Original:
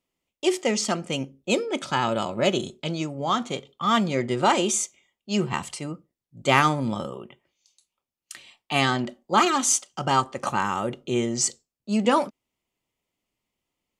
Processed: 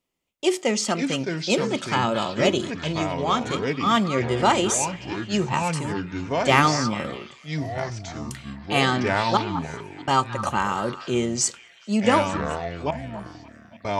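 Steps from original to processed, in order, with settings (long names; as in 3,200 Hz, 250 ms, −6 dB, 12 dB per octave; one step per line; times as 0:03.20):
0:09.37–0:10.08: formant filter u
echo through a band-pass that steps 215 ms, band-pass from 1,400 Hz, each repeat 0.7 octaves, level −10.5 dB
delay with pitch and tempo change per echo 396 ms, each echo −5 semitones, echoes 2, each echo −6 dB
level +1 dB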